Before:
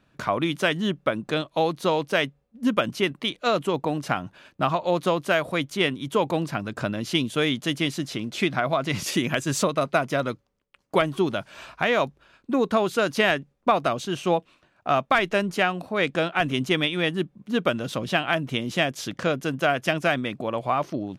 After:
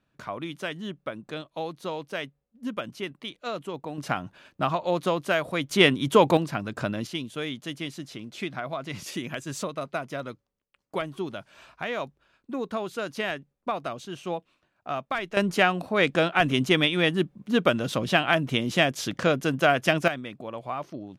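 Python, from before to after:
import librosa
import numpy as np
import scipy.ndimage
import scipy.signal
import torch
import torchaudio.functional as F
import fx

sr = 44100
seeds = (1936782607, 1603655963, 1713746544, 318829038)

y = fx.gain(x, sr, db=fx.steps((0.0, -10.0), (3.98, -2.5), (5.7, 5.0), (6.37, -1.5), (7.07, -9.0), (15.37, 1.5), (20.08, -8.5)))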